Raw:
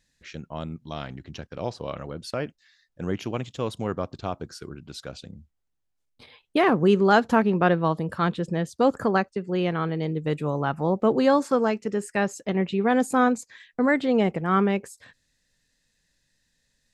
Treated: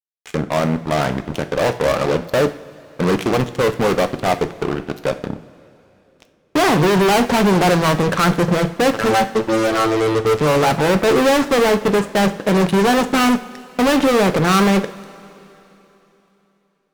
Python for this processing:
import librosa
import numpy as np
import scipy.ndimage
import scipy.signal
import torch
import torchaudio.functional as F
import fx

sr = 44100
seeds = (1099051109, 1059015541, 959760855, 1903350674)

y = scipy.signal.sosfilt(scipy.signal.bessel(2, 640.0, 'lowpass', norm='mag', fs=sr, output='sos'), x)
y = fx.tilt_eq(y, sr, slope=4.5)
y = fx.robotise(y, sr, hz=111.0, at=(8.91, 10.4))
y = fx.fuzz(y, sr, gain_db=46.0, gate_db=-52.0)
y = fx.rev_double_slope(y, sr, seeds[0], early_s=0.45, late_s=3.4, knee_db=-17, drr_db=9.0)